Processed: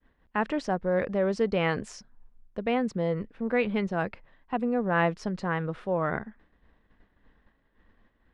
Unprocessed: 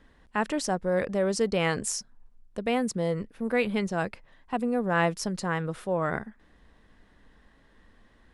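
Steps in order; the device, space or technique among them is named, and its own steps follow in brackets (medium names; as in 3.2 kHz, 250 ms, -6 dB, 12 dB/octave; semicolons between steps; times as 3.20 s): hearing-loss simulation (low-pass 3 kHz 12 dB/octave; expander -51 dBFS)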